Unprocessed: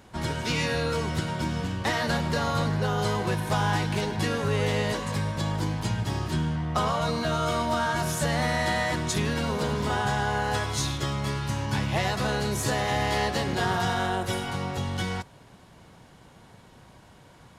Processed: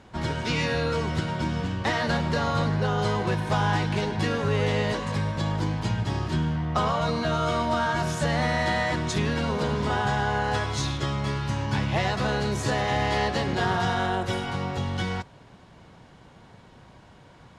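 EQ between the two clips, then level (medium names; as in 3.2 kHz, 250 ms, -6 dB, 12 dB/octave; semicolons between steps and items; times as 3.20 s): distance through air 71 m; +1.5 dB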